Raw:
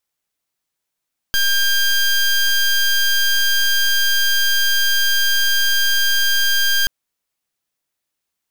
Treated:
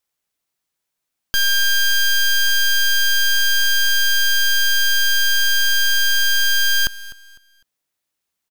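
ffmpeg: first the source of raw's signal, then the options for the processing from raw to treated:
-f lavfi -i "aevalsrc='0.168*(2*lt(mod(1600*t,1),0.18)-1)':duration=5.53:sample_rate=44100"
-af "aecho=1:1:252|504|756:0.126|0.0365|0.0106"

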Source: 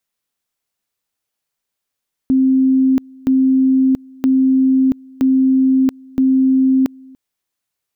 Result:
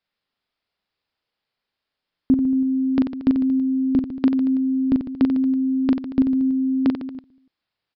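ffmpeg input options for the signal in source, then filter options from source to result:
-f lavfi -i "aevalsrc='pow(10,(-9.5-27*gte(mod(t,0.97),0.68))/20)*sin(2*PI*263*t)':duration=4.85:sample_rate=44100"
-filter_complex "[0:a]asplit=2[link_01][link_02];[link_02]aecho=0:1:40|90|152.5|230.6|328.3:0.631|0.398|0.251|0.158|0.1[link_03];[link_01][link_03]amix=inputs=2:normalize=0,aresample=11025,aresample=44100"

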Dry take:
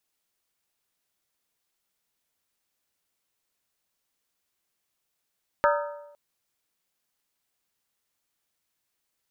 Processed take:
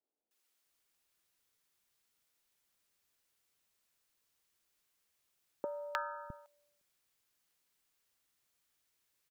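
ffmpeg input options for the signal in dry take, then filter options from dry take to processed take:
-f lavfi -i "aevalsrc='0.112*pow(10,-3*t/0.95)*sin(2*PI*583*t)+0.0891*pow(10,-3*t/0.752)*sin(2*PI*929.3*t)+0.0708*pow(10,-3*t/0.65)*sin(2*PI*1245.3*t)+0.0562*pow(10,-3*t/0.627)*sin(2*PI*1338.6*t)+0.0447*pow(10,-3*t/0.583)*sin(2*PI*1546.7*t)+0.0355*pow(10,-3*t/0.556)*sin(2*PI*1701.2*t)':duration=0.51:sample_rate=44100"
-filter_complex "[0:a]acompressor=threshold=-32dB:ratio=6,acrossover=split=220|740[link_01][link_02][link_03];[link_03]adelay=310[link_04];[link_01]adelay=660[link_05];[link_05][link_02][link_04]amix=inputs=3:normalize=0"

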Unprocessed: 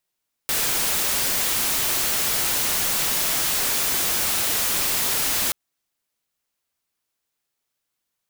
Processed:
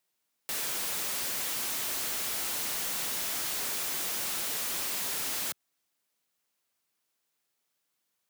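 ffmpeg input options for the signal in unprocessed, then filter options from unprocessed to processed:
-f lavfi -i "anoisesrc=color=white:amplitude=0.13:duration=5.03:sample_rate=44100:seed=1"
-af "highpass=130,asoftclip=type=tanh:threshold=-32dB"

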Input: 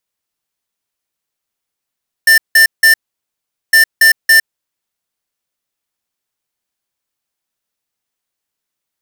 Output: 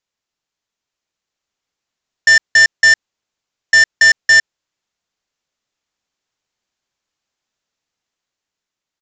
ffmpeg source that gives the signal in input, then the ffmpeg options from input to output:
-f lavfi -i "aevalsrc='0.473*(2*lt(mod(1790*t,1),0.5)-1)*clip(min(mod(mod(t,1.46),0.28),0.11-mod(mod(t,1.46),0.28))/0.005,0,1)*lt(mod(t,1.46),0.84)':duration=2.92:sample_rate=44100"
-af "dynaudnorm=framelen=280:gausssize=9:maxgain=3.5dB,aresample=16000,volume=7dB,asoftclip=hard,volume=-7dB,aresample=44100"

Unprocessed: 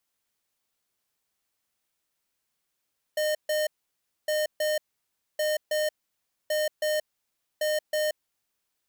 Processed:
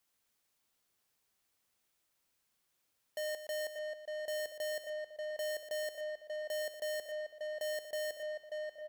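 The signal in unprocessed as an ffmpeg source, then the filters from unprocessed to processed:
-f lavfi -i "aevalsrc='0.0501*(2*lt(mod(611*t,1),0.5)-1)*clip(min(mod(mod(t,1.11),0.32),0.18-mod(mod(t,1.11),0.32))/0.005,0,1)*lt(mod(t,1.11),0.64)':duration=5.55:sample_rate=44100"
-filter_complex "[0:a]asplit=2[link_01][link_02];[link_02]adelay=586,lowpass=frequency=1700:poles=1,volume=-10dB,asplit=2[link_03][link_04];[link_04]adelay=586,lowpass=frequency=1700:poles=1,volume=0.52,asplit=2[link_05][link_06];[link_06]adelay=586,lowpass=frequency=1700:poles=1,volume=0.52,asplit=2[link_07][link_08];[link_08]adelay=586,lowpass=frequency=1700:poles=1,volume=0.52,asplit=2[link_09][link_10];[link_10]adelay=586,lowpass=frequency=1700:poles=1,volume=0.52,asplit=2[link_11][link_12];[link_12]adelay=586,lowpass=frequency=1700:poles=1,volume=0.52[link_13];[link_03][link_05][link_07][link_09][link_11][link_13]amix=inputs=6:normalize=0[link_14];[link_01][link_14]amix=inputs=2:normalize=0,asoftclip=type=tanh:threshold=-37dB,asplit=2[link_15][link_16];[link_16]aecho=0:1:119:0.299[link_17];[link_15][link_17]amix=inputs=2:normalize=0"

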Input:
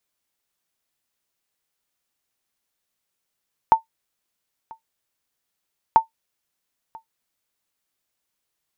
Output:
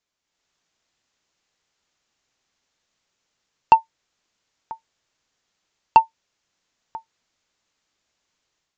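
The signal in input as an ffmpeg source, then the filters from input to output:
-f lavfi -i "aevalsrc='0.631*(sin(2*PI*898*mod(t,2.24))*exp(-6.91*mod(t,2.24)/0.12)+0.0501*sin(2*PI*898*max(mod(t,2.24)-0.99,0))*exp(-6.91*max(mod(t,2.24)-0.99,0)/0.12))':duration=4.48:sample_rate=44100"
-af "aresample=16000,aresample=44100,asoftclip=type=tanh:threshold=-10.5dB,dynaudnorm=framelen=220:gausssize=3:maxgain=8dB"

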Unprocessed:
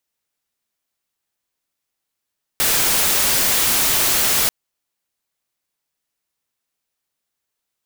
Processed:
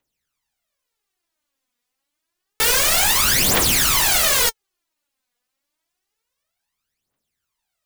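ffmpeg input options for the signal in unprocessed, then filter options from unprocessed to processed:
-f lavfi -i "anoisesrc=color=white:amplitude=0.245:duration=1.89:sample_rate=44100:seed=1"
-af "highshelf=frequency=7000:gain=-5.5,aphaser=in_gain=1:out_gain=1:delay=4.2:decay=0.72:speed=0.28:type=triangular"

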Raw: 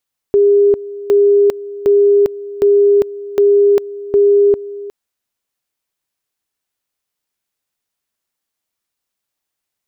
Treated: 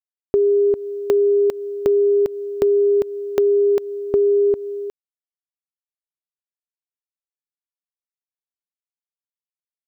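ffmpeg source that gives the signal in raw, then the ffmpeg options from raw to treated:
-f lavfi -i "aevalsrc='pow(10,(-6.5-17.5*gte(mod(t,0.76),0.4))/20)*sin(2*PI*405*t)':duration=4.56:sample_rate=44100"
-af "acrusher=bits=10:mix=0:aa=0.000001,acompressor=threshold=-15dB:ratio=4"

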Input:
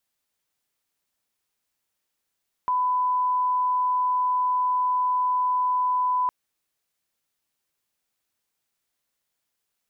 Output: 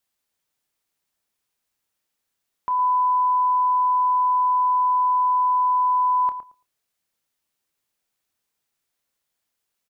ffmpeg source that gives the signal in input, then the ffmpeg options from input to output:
-f lavfi -i "sine=frequency=1000:duration=3.61:sample_rate=44100,volume=-1.94dB"
-filter_complex "[0:a]asplit=2[link_01][link_02];[link_02]adelay=28,volume=-12.5dB[link_03];[link_01][link_03]amix=inputs=2:normalize=0,asplit=2[link_04][link_05];[link_05]adelay=112,lowpass=frequency=1100:poles=1,volume=-8.5dB,asplit=2[link_06][link_07];[link_07]adelay=112,lowpass=frequency=1100:poles=1,volume=0.18,asplit=2[link_08][link_09];[link_09]adelay=112,lowpass=frequency=1100:poles=1,volume=0.18[link_10];[link_06][link_08][link_10]amix=inputs=3:normalize=0[link_11];[link_04][link_11]amix=inputs=2:normalize=0"

